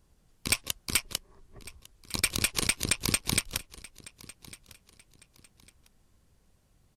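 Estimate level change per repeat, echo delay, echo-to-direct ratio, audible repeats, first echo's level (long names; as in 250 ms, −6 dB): −10.0 dB, 1,152 ms, −20.0 dB, 2, −20.5 dB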